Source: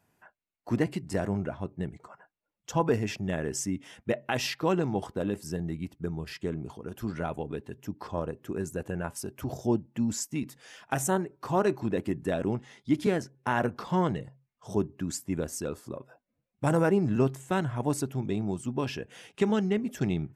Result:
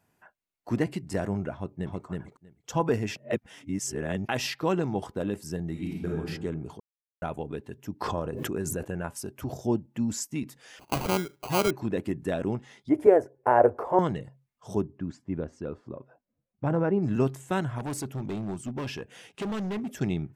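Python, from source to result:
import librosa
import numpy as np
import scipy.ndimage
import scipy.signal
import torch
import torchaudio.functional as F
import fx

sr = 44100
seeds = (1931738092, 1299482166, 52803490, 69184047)

y = fx.echo_throw(x, sr, start_s=1.54, length_s=0.5, ms=320, feedback_pct=10, wet_db=-1.0)
y = fx.reverb_throw(y, sr, start_s=5.71, length_s=0.46, rt60_s=1.3, drr_db=-3.5)
y = fx.pre_swell(y, sr, db_per_s=20.0, at=(8.0, 8.83), fade=0.02)
y = fx.sample_hold(y, sr, seeds[0], rate_hz=1800.0, jitter_pct=0, at=(10.79, 11.71))
y = fx.curve_eq(y, sr, hz=(110.0, 170.0, 250.0, 440.0, 640.0, 1300.0, 2100.0, 3800.0, 10000.0), db=(0, -16, -3, 12, 13, 0, -3, -23, -6), at=(12.89, 13.99))
y = fx.spacing_loss(y, sr, db_at_10k=34, at=(14.8, 17.02), fade=0.02)
y = fx.clip_hard(y, sr, threshold_db=-29.0, at=(17.78, 19.91))
y = fx.edit(y, sr, fx.reverse_span(start_s=3.17, length_s=1.11),
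    fx.silence(start_s=6.8, length_s=0.42), tone=tone)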